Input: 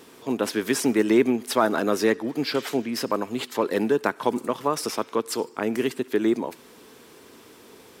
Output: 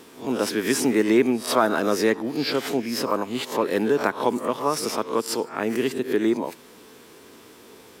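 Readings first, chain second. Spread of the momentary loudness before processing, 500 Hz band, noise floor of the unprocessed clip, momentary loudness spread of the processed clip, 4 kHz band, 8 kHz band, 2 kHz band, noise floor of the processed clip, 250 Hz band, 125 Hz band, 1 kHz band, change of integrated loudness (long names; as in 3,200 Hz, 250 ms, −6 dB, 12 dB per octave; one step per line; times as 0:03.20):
7 LU, +1.0 dB, −50 dBFS, 6 LU, +2.5 dB, +2.0 dB, +1.5 dB, −49 dBFS, +0.5 dB, +1.0 dB, +2.0 dB, +1.0 dB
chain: peak hold with a rise ahead of every peak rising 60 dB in 0.34 s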